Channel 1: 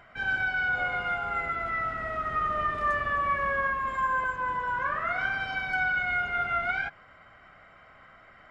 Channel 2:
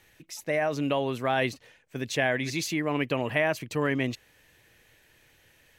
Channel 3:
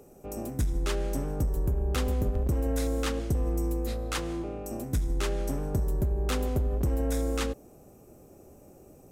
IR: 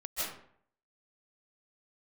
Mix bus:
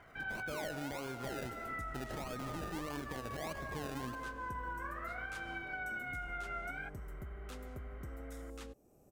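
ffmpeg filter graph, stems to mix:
-filter_complex "[0:a]acompressor=threshold=-38dB:ratio=2,lowpass=3.2k,volume=-5.5dB[a];[1:a]alimiter=limit=-19.5dB:level=0:latency=1:release=31,acrusher=samples=32:mix=1:aa=0.000001:lfo=1:lforange=19.2:lforate=1.6,volume=-4.5dB,asplit=2[b][c];[c]volume=-18dB[d];[2:a]acompressor=threshold=-44dB:ratio=1.5,adelay=1200,volume=-12dB[e];[3:a]atrim=start_sample=2205[f];[d][f]afir=irnorm=-1:irlink=0[g];[a][b][e][g]amix=inputs=4:normalize=0,alimiter=level_in=8.5dB:limit=-24dB:level=0:latency=1:release=238,volume=-8.5dB"

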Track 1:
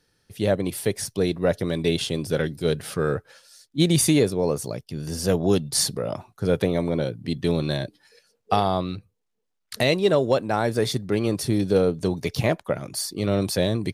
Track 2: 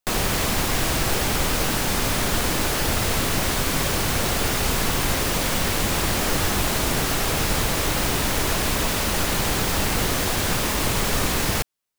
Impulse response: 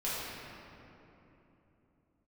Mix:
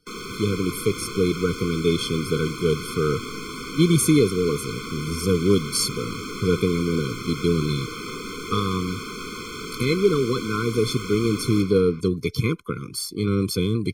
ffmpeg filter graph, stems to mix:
-filter_complex "[0:a]volume=2dB[a];[1:a]acrossover=split=170 7900:gain=0.158 1 0.178[b][c][d];[b][c][d]amix=inputs=3:normalize=0,volume=-10dB,asplit=2[e][f];[f]volume=-6.5dB[g];[2:a]atrim=start_sample=2205[h];[g][h]afir=irnorm=-1:irlink=0[i];[a][e][i]amix=inputs=3:normalize=0,afftfilt=real='re*eq(mod(floor(b*sr/1024/510),2),0)':imag='im*eq(mod(floor(b*sr/1024/510),2),0)':win_size=1024:overlap=0.75"

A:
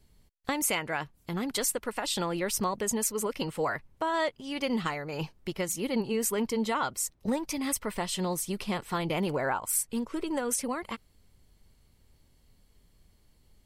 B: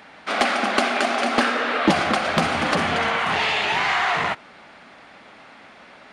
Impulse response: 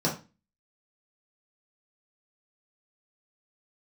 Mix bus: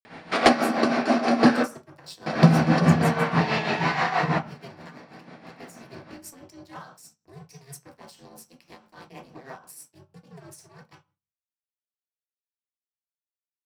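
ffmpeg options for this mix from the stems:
-filter_complex "[0:a]highpass=f=1.1k:p=1,aeval=exprs='val(0)*sin(2*PI*140*n/s)':c=same,aeval=exprs='sgn(val(0))*max(abs(val(0))-0.00794,0)':c=same,volume=-10.5dB,asplit=3[a][b][c];[b]volume=-3dB[d];[1:a]adelay=50,volume=1dB,asplit=3[e][f][g];[e]atrim=end=1.63,asetpts=PTS-STARTPTS,afade=t=out:st=1.626:d=0.004:c=hsin[h];[f]atrim=start=1.63:end=2.26,asetpts=PTS-STARTPTS,volume=0[i];[g]atrim=start=2.26,asetpts=PTS-STARTPTS,afade=t=in:d=0.004:c=hsin[j];[h][i][j]concat=n=3:v=0:a=1,asplit=2[k][l];[l]volume=-14dB[m];[c]apad=whole_len=272162[n];[k][n]sidechaincompress=threshold=-53dB:ratio=8:attack=6.8:release=1410[o];[2:a]atrim=start_sample=2205[p];[d][m]amix=inputs=2:normalize=0[q];[q][p]afir=irnorm=-1:irlink=0[r];[a][o][r]amix=inputs=3:normalize=0,tremolo=f=6.2:d=0.63,lowshelf=f=190:g=9.5"

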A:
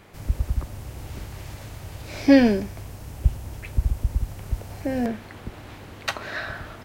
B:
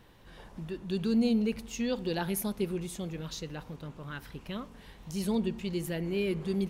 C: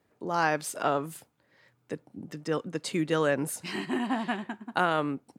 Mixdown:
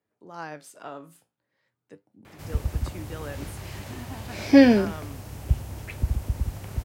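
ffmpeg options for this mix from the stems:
-filter_complex "[0:a]adelay=2250,volume=0.5dB[a];[2:a]flanger=delay=9.2:depth=8.8:regen=66:speed=0.45:shape=sinusoidal,volume=-8dB[b];[a][b]amix=inputs=2:normalize=0,highpass=62"

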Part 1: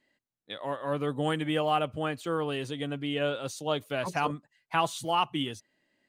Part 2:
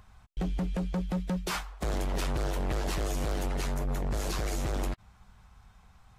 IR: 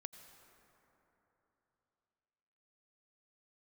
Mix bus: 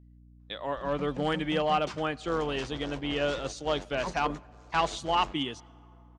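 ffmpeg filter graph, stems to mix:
-filter_complex "[0:a]agate=range=-22dB:threshold=-52dB:ratio=16:detection=peak,aeval=exprs='clip(val(0),-1,0.0944)':c=same,volume=0dB,asplit=3[a][b][c];[b]volume=-11dB[d];[1:a]adelay=400,volume=-7dB,asplit=2[e][f];[f]volume=-14.5dB[g];[c]apad=whole_len=294783[h];[e][h]sidechaingate=range=-33dB:threshold=-35dB:ratio=16:detection=peak[i];[2:a]atrim=start_sample=2205[j];[d][g]amix=inputs=2:normalize=0[k];[k][j]afir=irnorm=-1:irlink=0[l];[a][i][l]amix=inputs=3:normalize=0,lowpass=f=6.9k:w=0.5412,lowpass=f=6.9k:w=1.3066,lowshelf=f=130:g=-9.5,aeval=exprs='val(0)+0.00224*(sin(2*PI*60*n/s)+sin(2*PI*2*60*n/s)/2+sin(2*PI*3*60*n/s)/3+sin(2*PI*4*60*n/s)/4+sin(2*PI*5*60*n/s)/5)':c=same"

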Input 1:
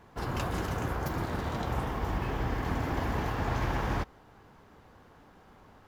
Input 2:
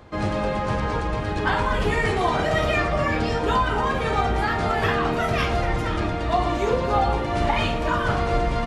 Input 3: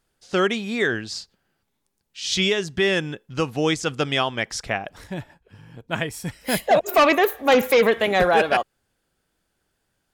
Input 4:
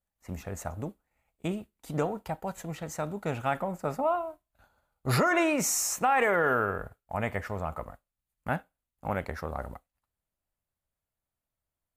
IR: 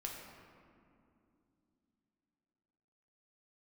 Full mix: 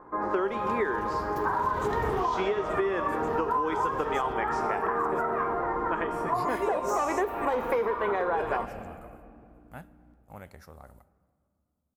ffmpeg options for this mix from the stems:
-filter_complex "[0:a]adelay=300,volume=2.5dB[a];[1:a]highshelf=f=2.1k:t=q:w=1.5:g=-11.5,volume=-5dB,asplit=2[b][c];[c]volume=-13.5dB[d];[2:a]aeval=exprs='val(0)+0.00562*(sin(2*PI*60*n/s)+sin(2*PI*2*60*n/s)/2+sin(2*PI*3*60*n/s)/3+sin(2*PI*4*60*n/s)/4+sin(2*PI*5*60*n/s)/5)':c=same,volume=-1dB,asplit=3[e][f][g];[f]volume=-15.5dB[h];[3:a]acrossover=split=6000[i][j];[j]acompressor=threshold=-43dB:ratio=4:attack=1:release=60[k];[i][k]amix=inputs=2:normalize=0,bass=f=250:g=3,treble=f=4k:g=11,adelay=1250,volume=-16dB,asplit=2[l][m];[m]volume=-13.5dB[n];[g]apad=whole_len=272328[o];[a][o]sidechaincompress=threshold=-36dB:ratio=5:attack=37:release=936[p];[b][e]amix=inputs=2:normalize=0,highpass=300,equalizer=f=390:t=q:w=4:g=7,equalizer=f=640:t=q:w=4:g=-5,equalizer=f=1k:t=q:w=4:g=10,lowpass=f=2.1k:w=0.5412,lowpass=f=2.1k:w=1.3066,alimiter=limit=-12dB:level=0:latency=1:release=356,volume=0dB[q];[4:a]atrim=start_sample=2205[r];[d][h][n]amix=inputs=3:normalize=0[s];[s][r]afir=irnorm=-1:irlink=0[t];[p][l][q][t]amix=inputs=4:normalize=0,acompressor=threshold=-24dB:ratio=6"

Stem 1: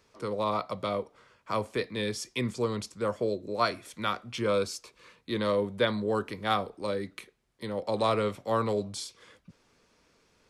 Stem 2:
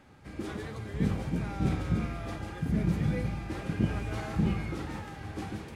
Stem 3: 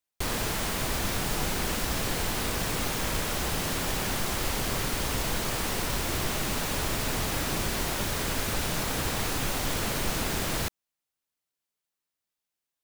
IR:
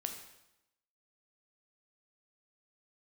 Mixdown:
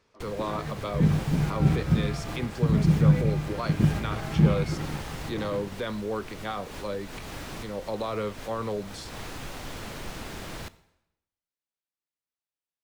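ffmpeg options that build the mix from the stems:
-filter_complex "[0:a]alimiter=limit=-20.5dB:level=0:latency=1,volume=-1.5dB,asplit=2[a][b];[1:a]equalizer=f=150:t=o:w=0.21:g=13,aeval=exprs='sgn(val(0))*max(abs(val(0))-0.00668,0)':c=same,volume=3dB[c];[2:a]volume=-10dB,asplit=2[d][e];[e]volume=-8.5dB[f];[b]apad=whole_len=566031[g];[d][g]sidechaincompress=threshold=-43dB:ratio=8:attack=7.2:release=140[h];[3:a]atrim=start_sample=2205[i];[f][i]afir=irnorm=-1:irlink=0[j];[a][c][h][j]amix=inputs=4:normalize=0,highshelf=f=7.4k:g=-10.5"

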